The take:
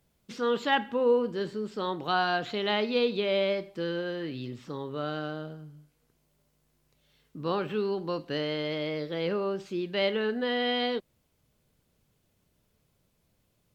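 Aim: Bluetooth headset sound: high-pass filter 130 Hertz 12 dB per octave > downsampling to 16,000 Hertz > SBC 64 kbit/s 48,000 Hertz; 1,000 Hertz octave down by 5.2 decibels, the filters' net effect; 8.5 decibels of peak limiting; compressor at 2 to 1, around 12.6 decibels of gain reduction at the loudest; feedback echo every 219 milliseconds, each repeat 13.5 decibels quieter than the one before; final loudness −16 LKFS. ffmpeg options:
ffmpeg -i in.wav -af "equalizer=frequency=1000:width_type=o:gain=-7.5,acompressor=threshold=-45dB:ratio=2,alimiter=level_in=11dB:limit=-24dB:level=0:latency=1,volume=-11dB,highpass=130,aecho=1:1:219|438:0.211|0.0444,aresample=16000,aresample=44100,volume=28dB" -ar 48000 -c:a sbc -b:a 64k out.sbc

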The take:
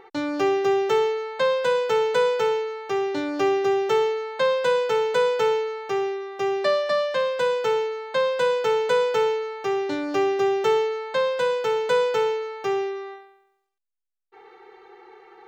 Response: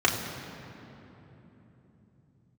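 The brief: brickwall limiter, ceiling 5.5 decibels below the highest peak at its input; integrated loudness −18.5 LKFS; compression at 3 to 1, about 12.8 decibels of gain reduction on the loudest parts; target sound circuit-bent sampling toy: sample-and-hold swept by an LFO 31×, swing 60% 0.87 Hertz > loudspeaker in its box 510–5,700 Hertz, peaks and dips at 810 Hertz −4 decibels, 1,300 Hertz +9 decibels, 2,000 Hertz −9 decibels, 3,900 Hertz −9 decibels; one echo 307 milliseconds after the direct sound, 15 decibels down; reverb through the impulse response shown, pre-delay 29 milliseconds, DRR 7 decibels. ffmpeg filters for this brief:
-filter_complex "[0:a]acompressor=threshold=-35dB:ratio=3,alimiter=level_in=2.5dB:limit=-24dB:level=0:latency=1,volume=-2.5dB,aecho=1:1:307:0.178,asplit=2[link_01][link_02];[1:a]atrim=start_sample=2205,adelay=29[link_03];[link_02][link_03]afir=irnorm=-1:irlink=0,volume=-22.5dB[link_04];[link_01][link_04]amix=inputs=2:normalize=0,acrusher=samples=31:mix=1:aa=0.000001:lfo=1:lforange=18.6:lforate=0.87,highpass=510,equalizer=frequency=810:width_type=q:width=4:gain=-4,equalizer=frequency=1300:width_type=q:width=4:gain=9,equalizer=frequency=2000:width_type=q:width=4:gain=-9,equalizer=frequency=3900:width_type=q:width=4:gain=-9,lowpass=frequency=5700:width=0.5412,lowpass=frequency=5700:width=1.3066,volume=19.5dB"

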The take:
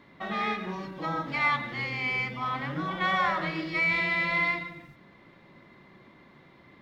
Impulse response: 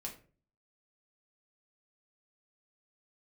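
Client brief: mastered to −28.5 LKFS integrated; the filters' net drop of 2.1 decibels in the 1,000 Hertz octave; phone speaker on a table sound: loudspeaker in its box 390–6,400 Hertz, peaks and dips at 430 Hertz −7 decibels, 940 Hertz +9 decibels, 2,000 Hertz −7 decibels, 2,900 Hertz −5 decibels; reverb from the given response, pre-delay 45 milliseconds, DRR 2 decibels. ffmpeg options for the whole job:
-filter_complex "[0:a]equalizer=frequency=1000:width_type=o:gain=-6.5,asplit=2[link_01][link_02];[1:a]atrim=start_sample=2205,adelay=45[link_03];[link_02][link_03]afir=irnorm=-1:irlink=0,volume=0dB[link_04];[link_01][link_04]amix=inputs=2:normalize=0,highpass=frequency=390:width=0.5412,highpass=frequency=390:width=1.3066,equalizer=frequency=430:width_type=q:width=4:gain=-7,equalizer=frequency=940:width_type=q:width=4:gain=9,equalizer=frequency=2000:width_type=q:width=4:gain=-7,equalizer=frequency=2900:width_type=q:width=4:gain=-5,lowpass=frequency=6400:width=0.5412,lowpass=frequency=6400:width=1.3066,volume=2.5dB"

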